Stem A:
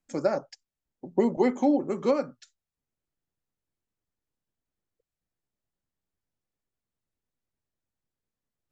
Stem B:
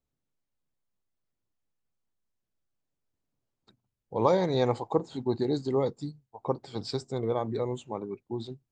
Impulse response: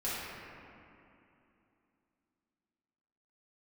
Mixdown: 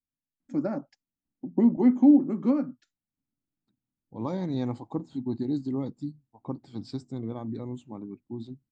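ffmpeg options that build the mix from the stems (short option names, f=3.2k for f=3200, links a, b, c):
-filter_complex "[0:a]lowpass=f=1.1k:p=1,lowshelf=f=120:g=-11.5,adelay=400,volume=-3dB[a];[1:a]equalizer=f=510:t=o:w=1.6:g=3,volume=-10.5dB,afade=t=in:st=3.89:d=0.48:silence=0.281838[b];[a][b]amix=inputs=2:normalize=0,lowshelf=f=350:t=q:w=3:g=7.5"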